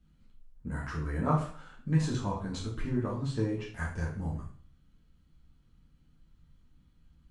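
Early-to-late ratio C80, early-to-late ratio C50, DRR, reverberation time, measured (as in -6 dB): 10.5 dB, 6.0 dB, -4.5 dB, 0.45 s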